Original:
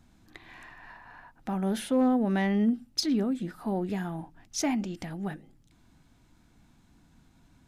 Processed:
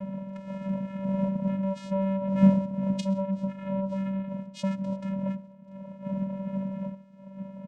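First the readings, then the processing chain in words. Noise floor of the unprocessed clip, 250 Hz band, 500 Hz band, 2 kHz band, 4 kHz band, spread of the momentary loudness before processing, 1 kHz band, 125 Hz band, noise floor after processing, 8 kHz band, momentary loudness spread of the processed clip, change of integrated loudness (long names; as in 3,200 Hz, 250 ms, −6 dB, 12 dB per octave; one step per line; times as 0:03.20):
−62 dBFS, +2.0 dB, +1.5 dB, −8.0 dB, −11.0 dB, 23 LU, −2.5 dB, +7.0 dB, −48 dBFS, below −10 dB, 14 LU, 0.0 dB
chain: wind on the microphone 310 Hz −32 dBFS
high-shelf EQ 5,100 Hz −12 dB
comb filter 2.2 ms, depth 95%
dynamic equaliser 860 Hz, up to −7 dB, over −41 dBFS, Q 0.72
in parallel at +2 dB: downward compressor, threshold −32 dBFS, peak gain reduction 19 dB
on the sum: channel vocoder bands 4, square 193 Hz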